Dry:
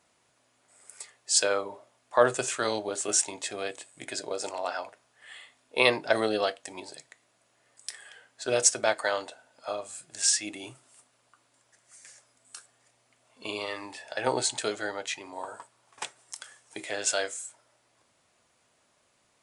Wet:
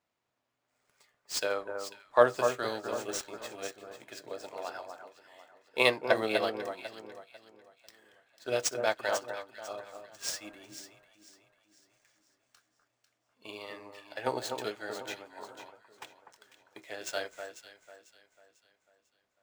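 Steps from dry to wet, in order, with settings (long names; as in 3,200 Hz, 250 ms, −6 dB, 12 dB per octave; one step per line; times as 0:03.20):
running median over 5 samples
delay that swaps between a low-pass and a high-pass 248 ms, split 1,600 Hz, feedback 66%, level −4 dB
expander for the loud parts 1.5 to 1, over −44 dBFS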